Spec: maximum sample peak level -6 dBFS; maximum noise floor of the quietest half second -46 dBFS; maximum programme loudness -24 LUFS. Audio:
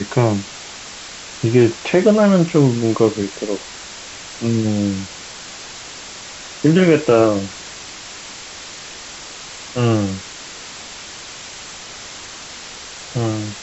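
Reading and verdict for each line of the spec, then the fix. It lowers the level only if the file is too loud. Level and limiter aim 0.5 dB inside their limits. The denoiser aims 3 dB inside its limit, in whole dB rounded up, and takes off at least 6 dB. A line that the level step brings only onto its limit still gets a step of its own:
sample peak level -1.5 dBFS: fail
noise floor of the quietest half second -34 dBFS: fail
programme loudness -17.5 LUFS: fail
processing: denoiser 8 dB, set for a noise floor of -34 dBFS; gain -7 dB

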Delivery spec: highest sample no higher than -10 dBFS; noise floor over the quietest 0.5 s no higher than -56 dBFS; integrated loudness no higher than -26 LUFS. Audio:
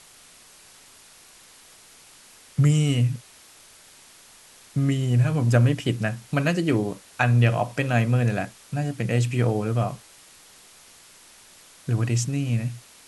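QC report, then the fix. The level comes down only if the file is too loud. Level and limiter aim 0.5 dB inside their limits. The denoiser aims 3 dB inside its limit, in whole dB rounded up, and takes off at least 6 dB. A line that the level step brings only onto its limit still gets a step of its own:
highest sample -5.0 dBFS: fail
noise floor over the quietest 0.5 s -51 dBFS: fail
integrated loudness -23.5 LUFS: fail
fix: denoiser 6 dB, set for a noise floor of -51 dBFS; gain -3 dB; limiter -10.5 dBFS

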